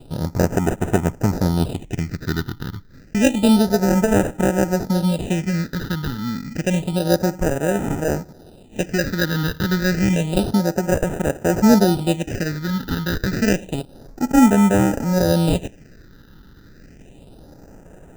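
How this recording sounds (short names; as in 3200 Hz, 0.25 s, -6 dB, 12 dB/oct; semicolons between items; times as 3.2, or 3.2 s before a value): aliases and images of a low sample rate 1100 Hz, jitter 0%; phasing stages 6, 0.29 Hz, lowest notch 640–4300 Hz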